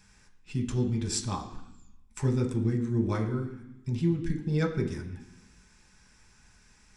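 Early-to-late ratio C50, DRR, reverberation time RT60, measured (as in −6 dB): 9.0 dB, 1.5 dB, 0.80 s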